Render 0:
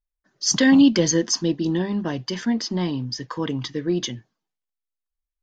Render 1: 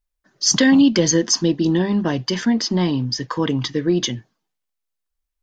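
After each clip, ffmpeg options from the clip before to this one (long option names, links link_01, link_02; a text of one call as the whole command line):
ffmpeg -i in.wav -af "acompressor=threshold=-20dB:ratio=2,volume=6dB" out.wav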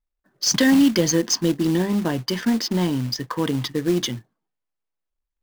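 ffmpeg -i in.wav -af "adynamicsmooth=sensitivity=4.5:basefreq=2000,acrusher=bits=4:mode=log:mix=0:aa=0.000001,volume=-2.5dB" out.wav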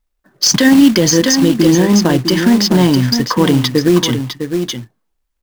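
ffmpeg -i in.wav -af "aecho=1:1:655:0.376,alimiter=level_in=12.5dB:limit=-1dB:release=50:level=0:latency=1,volume=-1dB" out.wav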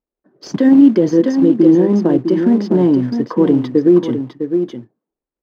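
ffmpeg -i in.wav -af "bandpass=frequency=360:width_type=q:width=1.4:csg=0,volume=2dB" out.wav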